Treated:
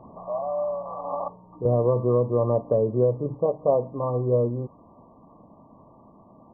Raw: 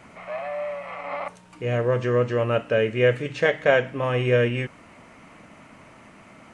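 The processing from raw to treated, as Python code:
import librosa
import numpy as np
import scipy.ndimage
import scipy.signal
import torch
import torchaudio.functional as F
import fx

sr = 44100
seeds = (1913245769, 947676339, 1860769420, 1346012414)

y = fx.rider(x, sr, range_db=3, speed_s=2.0)
y = fx.brickwall_lowpass(y, sr, high_hz=1200.0)
y = fx.band_squash(y, sr, depth_pct=100, at=(1.65, 3.35))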